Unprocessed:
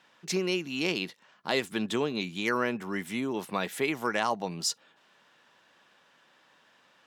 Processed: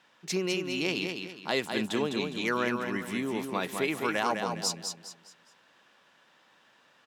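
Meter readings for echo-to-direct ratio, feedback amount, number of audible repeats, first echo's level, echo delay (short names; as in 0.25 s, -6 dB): -5.0 dB, 34%, 4, -5.5 dB, 0.205 s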